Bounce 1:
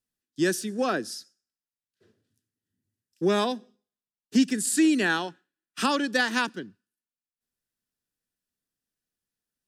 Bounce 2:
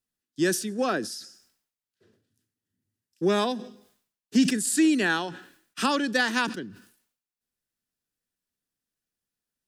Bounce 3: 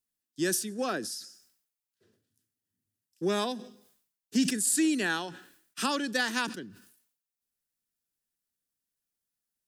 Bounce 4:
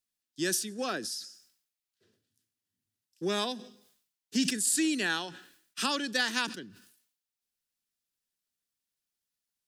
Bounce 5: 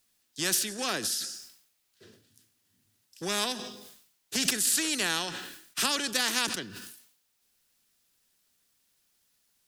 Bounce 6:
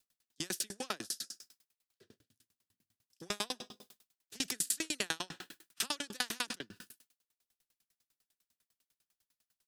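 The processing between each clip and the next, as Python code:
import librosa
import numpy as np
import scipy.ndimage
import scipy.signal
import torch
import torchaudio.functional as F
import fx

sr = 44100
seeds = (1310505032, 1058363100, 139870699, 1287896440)

y1 = fx.sustainer(x, sr, db_per_s=98.0)
y2 = fx.high_shelf(y1, sr, hz=6000.0, db=9.0)
y2 = F.gain(torch.from_numpy(y2), -5.5).numpy()
y3 = fx.peak_eq(y2, sr, hz=3800.0, db=6.0, octaves=2.0)
y3 = F.gain(torch.from_numpy(y3), -3.0).numpy()
y4 = fx.spectral_comp(y3, sr, ratio=2.0)
y4 = F.gain(torch.from_numpy(y4), 4.0).numpy()
y5 = fx.tremolo_decay(y4, sr, direction='decaying', hz=10.0, depth_db=38)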